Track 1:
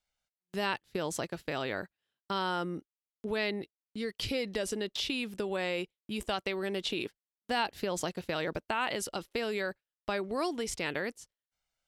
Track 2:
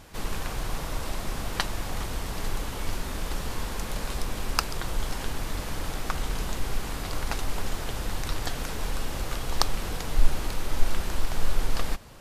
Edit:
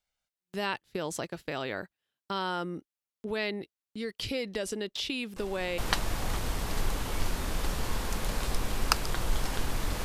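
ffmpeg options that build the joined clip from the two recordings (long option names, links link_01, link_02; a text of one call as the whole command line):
ffmpeg -i cue0.wav -i cue1.wav -filter_complex "[1:a]asplit=2[link_01][link_02];[0:a]apad=whole_dur=10.04,atrim=end=10.04,atrim=end=5.782[link_03];[link_02]atrim=start=1.448:end=5.71[link_04];[link_01]atrim=start=1.03:end=1.45,asetpts=PTS-STARTPTS,volume=-12.5dB,afade=type=in:duration=0.004:curve=hsin,afade=type=out:start_time=0.416:duration=0.004:curve=hsin,adelay=5360[link_05];[link_03][link_04]acrossfade=duration=0.004:curve1=hsin:curve2=hsin[link_06];[link_06][link_05]amix=inputs=2:normalize=0" out.wav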